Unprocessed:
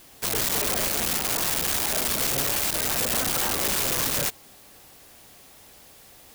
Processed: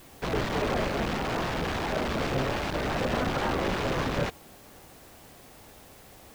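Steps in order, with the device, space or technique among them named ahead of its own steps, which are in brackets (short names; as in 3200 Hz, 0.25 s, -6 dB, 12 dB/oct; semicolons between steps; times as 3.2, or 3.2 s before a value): cassette deck with a dirty head (tape spacing loss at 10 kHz 37 dB; wow and flutter; white noise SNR 25 dB); gain +5.5 dB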